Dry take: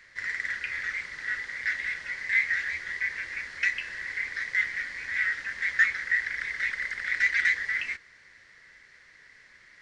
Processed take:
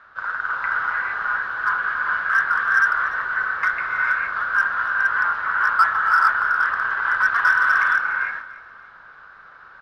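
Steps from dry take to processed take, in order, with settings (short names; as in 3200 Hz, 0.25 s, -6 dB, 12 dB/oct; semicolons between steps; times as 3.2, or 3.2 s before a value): LPF 1800 Hz 12 dB/oct; bell 130 Hz -12.5 dB 2.4 oct; non-linear reverb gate 0.49 s rising, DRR -1.5 dB; in parallel at -5 dB: hard clip -22 dBFS, distortion -17 dB; on the sum: low shelf 340 Hz -10 dB; on a send: feedback echo 0.292 s, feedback 37%, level -17.5 dB; on the sum: frequency shift -470 Hz; gain +6 dB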